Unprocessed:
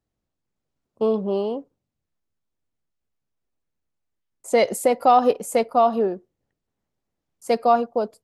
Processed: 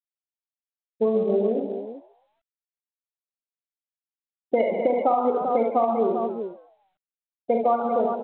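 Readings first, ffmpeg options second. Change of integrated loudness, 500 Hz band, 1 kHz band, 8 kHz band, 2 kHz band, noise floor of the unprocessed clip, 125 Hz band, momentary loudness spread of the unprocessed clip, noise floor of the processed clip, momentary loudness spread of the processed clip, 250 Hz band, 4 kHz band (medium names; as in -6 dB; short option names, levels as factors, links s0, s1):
-2.5 dB, -1.0 dB, -3.5 dB, under -40 dB, -7.0 dB, -82 dBFS, no reading, 11 LU, under -85 dBFS, 12 LU, 0.0 dB, under -15 dB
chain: -filter_complex "[0:a]afftfilt=real='re*gte(hypot(re,im),0.141)':imag='im*gte(hypot(re,im),0.141)':win_size=1024:overlap=0.75,lowpass=f=2000:p=1,lowshelf=f=86:g=-3,asplit=2[s0][s1];[s1]adelay=18,volume=0.224[s2];[s0][s2]amix=inputs=2:normalize=0,asplit=2[s3][s4];[s4]aecho=0:1:44|69|146|198|252|392:0.473|0.531|0.2|0.178|0.251|0.266[s5];[s3][s5]amix=inputs=2:normalize=0,acompressor=threshold=0.112:ratio=10,asplit=2[s6][s7];[s7]asplit=3[s8][s9][s10];[s8]adelay=134,afreqshift=130,volume=0.126[s11];[s9]adelay=268,afreqshift=260,volume=0.0389[s12];[s10]adelay=402,afreqshift=390,volume=0.0122[s13];[s11][s12][s13]amix=inputs=3:normalize=0[s14];[s6][s14]amix=inputs=2:normalize=0,volume=1.19" -ar 8000 -c:a pcm_mulaw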